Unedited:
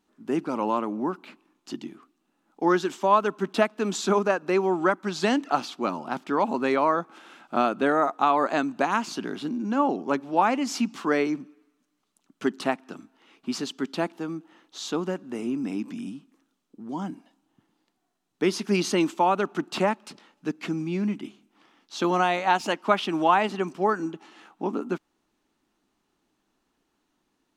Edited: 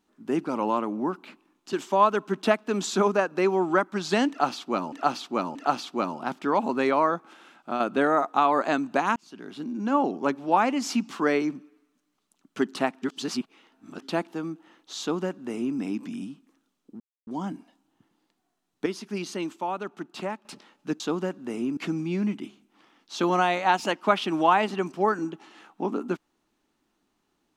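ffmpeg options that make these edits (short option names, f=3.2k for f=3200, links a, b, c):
-filter_complex "[0:a]asplit=13[a][b][c][d][e][f][g][h][i][j][k][l][m];[a]atrim=end=1.732[n];[b]atrim=start=2.838:end=6.032[o];[c]atrim=start=5.398:end=6.032[p];[d]atrim=start=5.398:end=7.65,asetpts=PTS-STARTPTS,afade=t=out:st=1.512:d=0.74:silence=0.446684[q];[e]atrim=start=7.65:end=9.01,asetpts=PTS-STARTPTS,afade=t=in:d=0.004:c=hsin:silence=0.446684,afade=t=out:st=1.356:d=0.004:c=hsin[r];[f]atrim=start=9.01:end=12.872,asetpts=PTS-STARTPTS,afade=t=in:d=0.77[s];[g]atrim=start=12.868:end=13.872,asetpts=PTS-STARTPTS,areverse[t];[h]atrim=start=13.868:end=16.85,asetpts=PTS-STARTPTS,afade=t=out:st=2.978:d=0.004:c=hsin,apad=pad_dur=0.27[u];[i]atrim=start=16.85:end=18.442,asetpts=PTS-STARTPTS,afade=t=in:d=0.004:c=hsin[v];[j]atrim=start=18.438:end=20.032,asetpts=PTS-STARTPTS,volume=-8.5dB[w];[k]atrim=start=20.028:end=20.582[x];[l]atrim=start=14.848:end=15.622[y];[m]atrim=start=20.578[z];[n][o]acrossfade=d=0.004:c1=hsin:c2=hsin[aa];[aa][p]acrossfade=d=0.004:c1=hsin:c2=hsin[ab];[q][r][s]concat=n=3:v=0:a=1[ac];[ab][ac]acrossfade=d=0.004:c1=hsin:c2=hsin[ad];[ad][t]acrossfade=d=0.004:c1=hsin:c2=hsin[ae];[u][v]concat=n=2:v=0:a=1[af];[ae][af]acrossfade=d=0.004:c1=hsin:c2=hsin[ag];[ag][w]acrossfade=d=0.004:c1=hsin:c2=hsin[ah];[ah][x]acrossfade=d=0.004:c1=hsin:c2=hsin[ai];[ai][y]acrossfade=d=0.004:c1=hsin:c2=hsin[aj];[aj][z]acrossfade=d=0.004:c1=hsin:c2=hsin"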